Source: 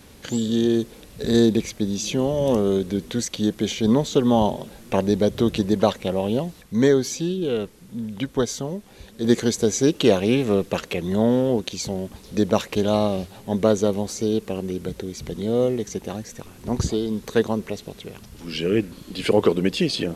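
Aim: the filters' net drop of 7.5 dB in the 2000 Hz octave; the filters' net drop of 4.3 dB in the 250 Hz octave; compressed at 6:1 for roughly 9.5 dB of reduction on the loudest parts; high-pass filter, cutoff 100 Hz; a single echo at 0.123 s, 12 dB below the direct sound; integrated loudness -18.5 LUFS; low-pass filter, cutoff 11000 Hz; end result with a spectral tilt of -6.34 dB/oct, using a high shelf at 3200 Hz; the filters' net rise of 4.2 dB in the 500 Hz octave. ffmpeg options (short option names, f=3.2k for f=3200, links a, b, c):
-af "highpass=100,lowpass=11k,equalizer=f=250:t=o:g=-8,equalizer=f=500:t=o:g=8,equalizer=f=2k:t=o:g=-7,highshelf=f=3.2k:g=-9,acompressor=threshold=-19dB:ratio=6,aecho=1:1:123:0.251,volume=7.5dB"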